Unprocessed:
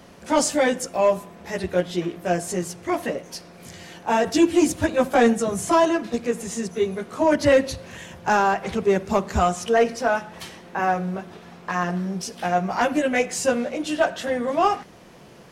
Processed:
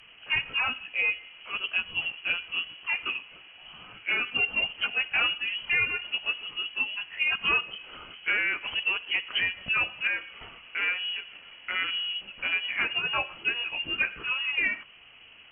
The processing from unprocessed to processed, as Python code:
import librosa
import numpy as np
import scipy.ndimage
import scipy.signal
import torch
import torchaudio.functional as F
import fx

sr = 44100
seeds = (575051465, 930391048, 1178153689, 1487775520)

y = fx.freq_invert(x, sr, carrier_hz=3100)
y = fx.env_lowpass_down(y, sr, base_hz=2200.0, full_db=-16.5)
y = y * librosa.db_to_amplitude(-5.0)